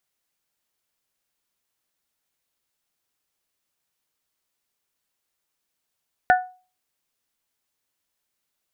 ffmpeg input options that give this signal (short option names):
-f lavfi -i "aevalsrc='0.299*pow(10,-3*t/0.36)*sin(2*PI*736*t)+0.188*pow(10,-3*t/0.222)*sin(2*PI*1472*t)+0.119*pow(10,-3*t/0.195)*sin(2*PI*1766.4*t)':d=0.89:s=44100"